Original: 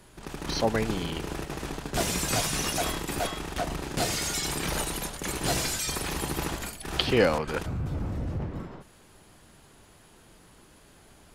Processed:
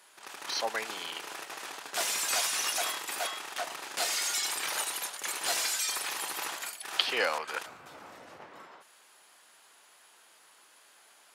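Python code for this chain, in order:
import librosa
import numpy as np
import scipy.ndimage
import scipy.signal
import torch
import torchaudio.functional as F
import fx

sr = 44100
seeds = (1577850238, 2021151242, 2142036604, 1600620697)

y = scipy.signal.sosfilt(scipy.signal.butter(2, 880.0, 'highpass', fs=sr, output='sos'), x)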